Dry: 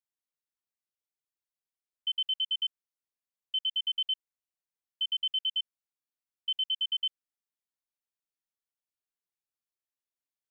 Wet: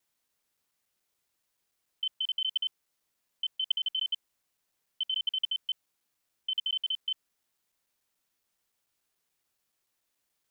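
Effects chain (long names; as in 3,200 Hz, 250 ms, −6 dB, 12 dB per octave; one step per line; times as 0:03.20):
reversed piece by piece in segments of 143 ms
compressor whose output falls as the input rises −37 dBFS, ratio −1
level +7 dB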